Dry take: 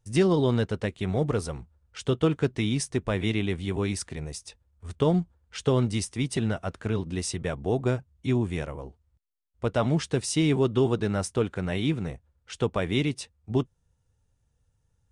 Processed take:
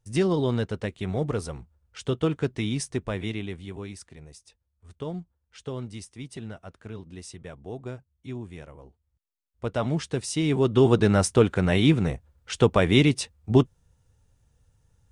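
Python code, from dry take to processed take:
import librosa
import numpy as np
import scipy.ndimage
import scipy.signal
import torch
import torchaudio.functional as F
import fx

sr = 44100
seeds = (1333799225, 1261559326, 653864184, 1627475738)

y = fx.gain(x, sr, db=fx.line((2.96, -1.5), (3.98, -11.0), (8.58, -11.0), (9.76, -2.0), (10.42, -2.0), (10.97, 7.0)))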